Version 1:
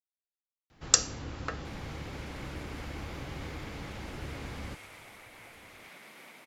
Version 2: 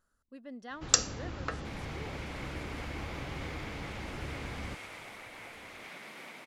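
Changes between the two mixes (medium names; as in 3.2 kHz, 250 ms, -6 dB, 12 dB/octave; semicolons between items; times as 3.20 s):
speech: unmuted; second sound +4.5 dB; master: add peaking EQ 14 kHz -8.5 dB 1 oct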